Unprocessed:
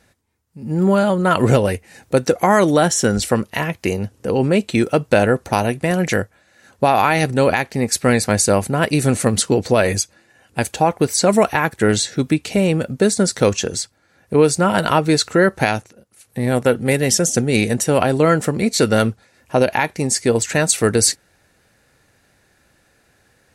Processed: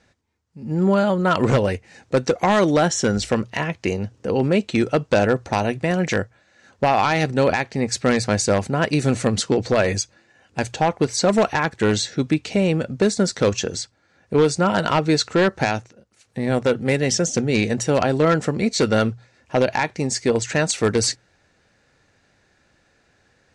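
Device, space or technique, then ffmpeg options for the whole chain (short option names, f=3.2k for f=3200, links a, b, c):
synthesiser wavefolder: -filter_complex "[0:a]aeval=exprs='0.473*(abs(mod(val(0)/0.473+3,4)-2)-1)':c=same,lowpass=f=7.1k:w=0.5412,lowpass=f=7.1k:w=1.3066,asettb=1/sr,asplit=3[a][b][c];[a]atrim=end=17.124[d];[b]atrim=start=17.12:end=17.79,asetpts=PTS-STARTPTS,afade=t=in:d=0.004:c=qsin,afade=t=out:st=0.666:d=0.004:c=qsin,lowpass=8.9k[e];[c]atrim=start=17.786[f];[d][e]acrossfade=d=0.004:c1=hsin:c2=qsin[g];[g][f]acrossfade=d=0.004:c1=qsin:c2=hsin,bandreject=f=60:t=h:w=6,bandreject=f=120:t=h:w=6,volume=-2.5dB"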